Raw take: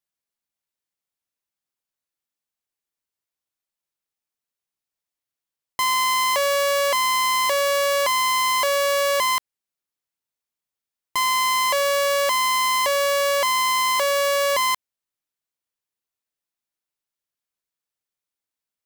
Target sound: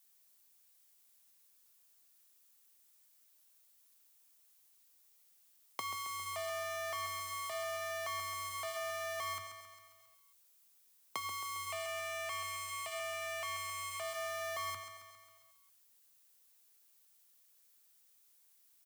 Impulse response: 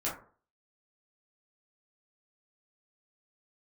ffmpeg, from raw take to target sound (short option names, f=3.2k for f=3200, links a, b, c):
-filter_complex "[0:a]crystalizer=i=2.5:c=0,asoftclip=type=hard:threshold=-17.5dB,alimiter=level_in=5dB:limit=-24dB:level=0:latency=1,volume=-5dB,asettb=1/sr,asplit=3[a][b][c];[a]atrim=end=11.704[d];[b]atrim=start=11.7:end=14.01,asetpts=PTS-STARTPTS,afade=t=in:d=0.004:c=qsin,afade=t=out:st=2.306:d=0.004:c=qsin,equalizer=f=200:t=o:w=0.33:g=-10,equalizer=f=2.5k:t=o:w=0.33:g=11,equalizer=f=8k:t=o:w=0.33:g=6[e];[c]atrim=start=14.006[f];[d][e]acrossfade=d=0.004:c1=hsin:c2=qsin[g];[g][f]acrossfade=d=0.004:c1=qsin:c2=hsin,acompressor=threshold=-46dB:ratio=12,afreqshift=93,equalizer=f=150:w=1.7:g=-6.5,aecho=1:1:135|270|405|540|675|810|945:0.355|0.209|0.124|0.0729|0.043|0.0254|0.015,flanger=delay=4.5:depth=1.9:regen=-79:speed=0.37:shape=sinusoidal,volume=12dB"